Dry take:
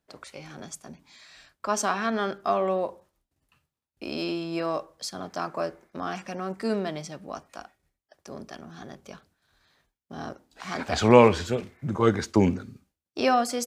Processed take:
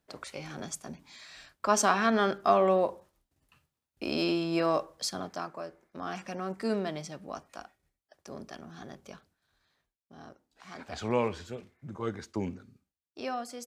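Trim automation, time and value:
5.11 s +1.5 dB
5.64 s -11 dB
6.21 s -3 dB
9.05 s -3 dB
10.17 s -13 dB

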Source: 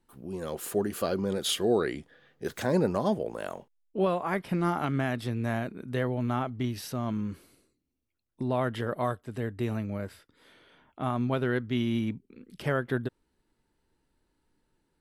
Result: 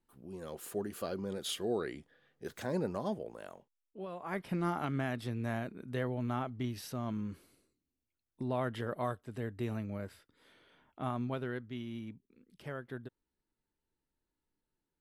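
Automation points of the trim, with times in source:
3.11 s -9 dB
4.07 s -17.5 dB
4.39 s -6 dB
11.07 s -6 dB
11.83 s -14 dB

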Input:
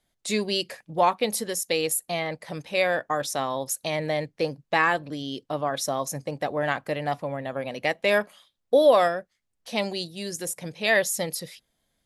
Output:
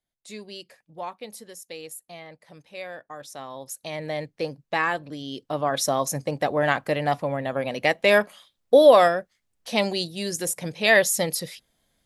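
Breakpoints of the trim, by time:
3.11 s -13.5 dB
4.20 s -2.5 dB
5.21 s -2.5 dB
5.79 s +4 dB

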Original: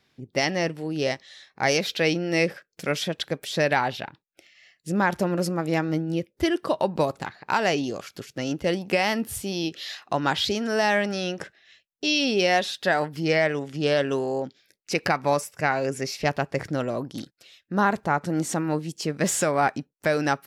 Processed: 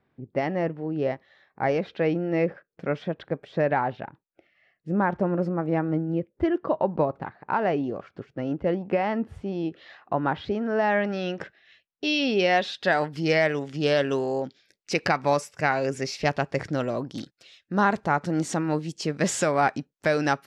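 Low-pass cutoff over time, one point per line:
10.67 s 1.3 kHz
11.42 s 3.4 kHz
12.56 s 3.4 kHz
13.10 s 7 kHz

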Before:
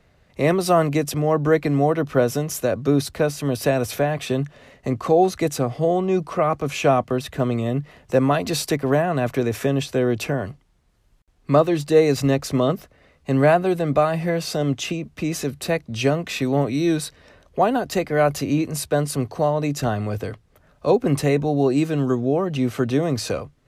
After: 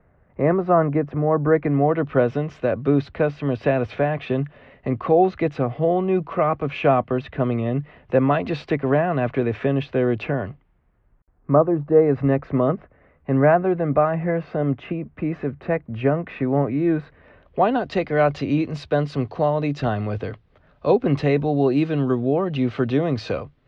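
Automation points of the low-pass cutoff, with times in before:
low-pass 24 dB/octave
1.40 s 1.7 kHz
2.08 s 2.9 kHz
10.43 s 2.9 kHz
11.80 s 1.2 kHz
12.28 s 2 kHz
17.05 s 2 kHz
17.73 s 3.9 kHz

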